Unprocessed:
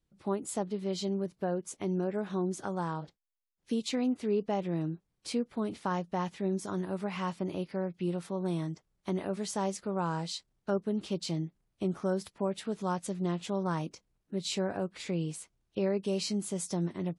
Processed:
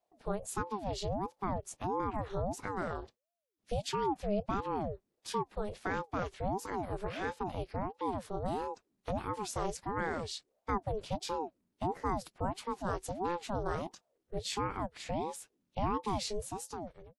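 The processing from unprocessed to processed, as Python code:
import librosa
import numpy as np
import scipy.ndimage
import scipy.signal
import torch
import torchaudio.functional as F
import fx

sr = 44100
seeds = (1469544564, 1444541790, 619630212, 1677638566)

y = fx.fade_out_tail(x, sr, length_s=0.92)
y = fx.ring_lfo(y, sr, carrier_hz=450.0, swing_pct=55, hz=1.5)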